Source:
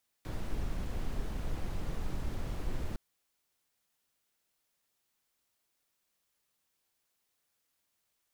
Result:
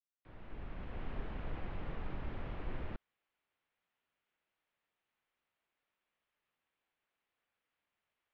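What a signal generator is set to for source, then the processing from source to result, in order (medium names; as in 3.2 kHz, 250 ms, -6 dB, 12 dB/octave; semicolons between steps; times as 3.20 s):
noise brown, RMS -33.5 dBFS 2.71 s
fade-in on the opening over 1.16 s; low-pass 2.9 kHz 24 dB/octave; bass shelf 390 Hz -5.5 dB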